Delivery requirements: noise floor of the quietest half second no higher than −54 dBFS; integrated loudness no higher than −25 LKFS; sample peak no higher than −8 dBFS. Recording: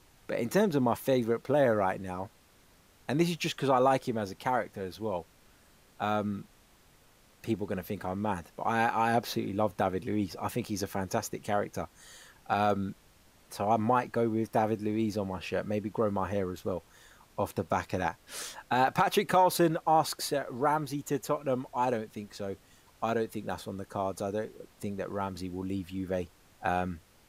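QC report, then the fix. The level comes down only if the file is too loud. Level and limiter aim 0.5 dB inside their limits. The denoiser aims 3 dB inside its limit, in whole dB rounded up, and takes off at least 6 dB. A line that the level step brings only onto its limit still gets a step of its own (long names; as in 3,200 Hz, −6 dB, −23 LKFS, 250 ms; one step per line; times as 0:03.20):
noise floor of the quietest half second −61 dBFS: in spec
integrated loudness −31.0 LKFS: in spec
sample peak −12.5 dBFS: in spec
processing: no processing needed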